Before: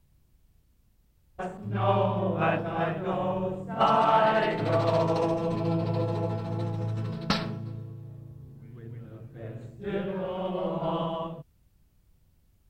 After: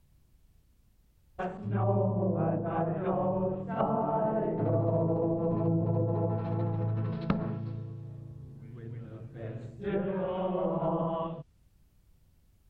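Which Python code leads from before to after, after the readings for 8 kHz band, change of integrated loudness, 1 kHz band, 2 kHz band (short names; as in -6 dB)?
n/a, -3.0 dB, -7.5 dB, -12.5 dB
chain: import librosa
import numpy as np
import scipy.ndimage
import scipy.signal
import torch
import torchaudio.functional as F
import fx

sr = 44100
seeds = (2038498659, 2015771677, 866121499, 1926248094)

y = fx.env_lowpass_down(x, sr, base_hz=500.0, full_db=-23.0)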